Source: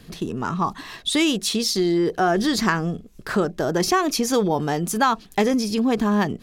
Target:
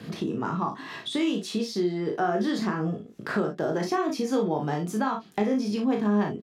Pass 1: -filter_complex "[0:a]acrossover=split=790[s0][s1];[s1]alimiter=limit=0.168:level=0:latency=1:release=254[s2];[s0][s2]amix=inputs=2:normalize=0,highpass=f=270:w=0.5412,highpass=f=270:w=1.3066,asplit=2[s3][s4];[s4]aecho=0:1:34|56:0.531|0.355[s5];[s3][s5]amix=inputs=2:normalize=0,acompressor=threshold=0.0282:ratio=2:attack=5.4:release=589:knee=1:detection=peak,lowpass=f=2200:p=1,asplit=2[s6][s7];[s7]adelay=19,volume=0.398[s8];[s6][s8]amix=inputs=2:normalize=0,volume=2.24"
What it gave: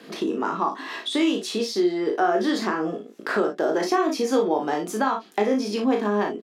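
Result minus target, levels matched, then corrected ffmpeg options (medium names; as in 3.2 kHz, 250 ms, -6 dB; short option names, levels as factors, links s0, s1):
125 Hz band -11.5 dB; compression: peak gain reduction -5 dB
-filter_complex "[0:a]acrossover=split=790[s0][s1];[s1]alimiter=limit=0.168:level=0:latency=1:release=254[s2];[s0][s2]amix=inputs=2:normalize=0,highpass=f=120:w=0.5412,highpass=f=120:w=1.3066,asplit=2[s3][s4];[s4]aecho=0:1:34|56:0.531|0.355[s5];[s3][s5]amix=inputs=2:normalize=0,acompressor=threshold=0.00944:ratio=2:attack=5.4:release=589:knee=1:detection=peak,lowpass=f=2200:p=1,asplit=2[s6][s7];[s7]adelay=19,volume=0.398[s8];[s6][s8]amix=inputs=2:normalize=0,volume=2.24"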